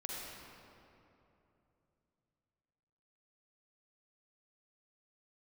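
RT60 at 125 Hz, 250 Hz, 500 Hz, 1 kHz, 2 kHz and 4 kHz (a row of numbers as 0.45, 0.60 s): 4.1, 3.5, 3.2, 2.8, 2.2, 1.7 s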